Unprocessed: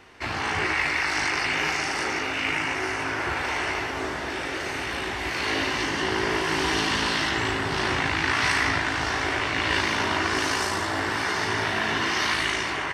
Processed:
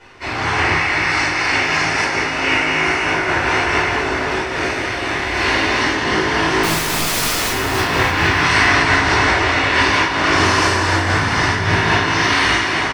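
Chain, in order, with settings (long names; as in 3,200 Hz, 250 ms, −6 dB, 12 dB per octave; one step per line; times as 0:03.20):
low-pass filter 10,000 Hz 12 dB per octave
0:06.63–0:07.50: wrap-around overflow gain 22.5 dB
0:11.05–0:11.75: low shelf with overshoot 230 Hz +8 dB, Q 1.5
repeating echo 296 ms, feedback 40%, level −6.5 dB
convolution reverb RT60 1.0 s, pre-delay 8 ms, DRR −9.5 dB
amplitude modulation by smooth noise, depth 60%
level −1 dB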